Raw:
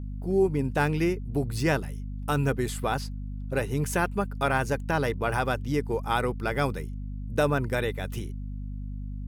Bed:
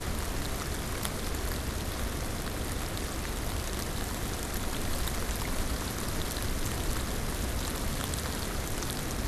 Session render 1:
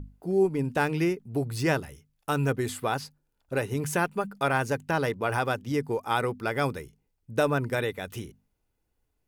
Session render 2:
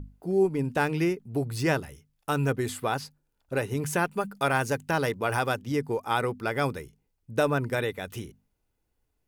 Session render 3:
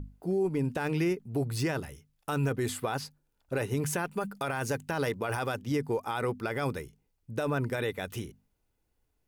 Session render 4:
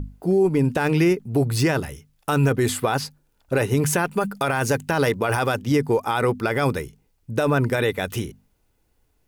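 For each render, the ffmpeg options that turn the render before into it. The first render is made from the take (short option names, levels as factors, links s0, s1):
-af "bandreject=f=50:t=h:w=6,bandreject=f=100:t=h:w=6,bandreject=f=150:t=h:w=6,bandreject=f=200:t=h:w=6,bandreject=f=250:t=h:w=6"
-filter_complex "[0:a]asettb=1/sr,asplit=3[s0][s1][s2];[s0]atrim=end=4.114[s3];[s1]atrim=start=4.11:end=5.56,asetpts=PTS-STARTPTS,afade=t=in:d=0.004:c=qsin,afade=t=out:st=1.446:d=0.004:c=qsin,highshelf=f=4000:g=5[s4];[s2]atrim=start=5.556[s5];[s3][s4]acrossfade=d=0.004:c1=hsin:c2=qsin[s6];[s6][s5]acrossfade=d=0.004:c1=qsin:c2=hsin"
-af "alimiter=limit=0.0891:level=0:latency=1:release=26"
-af "volume=3.16"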